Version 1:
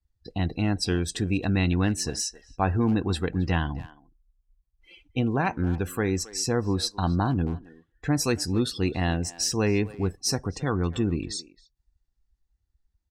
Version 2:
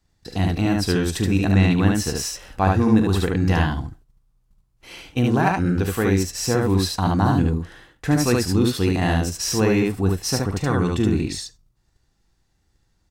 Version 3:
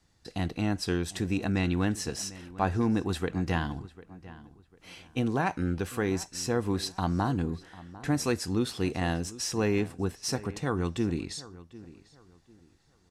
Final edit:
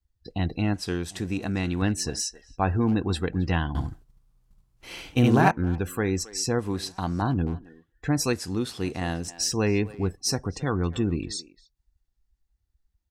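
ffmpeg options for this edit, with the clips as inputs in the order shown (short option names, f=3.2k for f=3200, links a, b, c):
-filter_complex "[2:a]asplit=3[a][b][c];[0:a]asplit=5[d][e][f][g][h];[d]atrim=end=0.742[i];[a]atrim=start=0.738:end=1.822[j];[e]atrim=start=1.818:end=3.752[k];[1:a]atrim=start=3.748:end=5.512[l];[f]atrim=start=5.508:end=6.592[m];[b]atrim=start=6.588:end=7.222[n];[g]atrim=start=7.218:end=8.332[o];[c]atrim=start=8.328:end=9.282[p];[h]atrim=start=9.278[q];[i][j]acrossfade=d=0.004:c1=hsin:c2=hsin[r];[r][k]acrossfade=d=0.004:c1=hsin:c2=hsin[s];[s][l]acrossfade=d=0.004:c1=hsin:c2=hsin[t];[t][m]acrossfade=d=0.004:c1=hsin:c2=hsin[u];[u][n]acrossfade=d=0.004:c1=hsin:c2=hsin[v];[v][o]acrossfade=d=0.004:c1=hsin:c2=hsin[w];[w][p]acrossfade=d=0.004:c1=hsin:c2=hsin[x];[x][q]acrossfade=d=0.004:c1=hsin:c2=hsin"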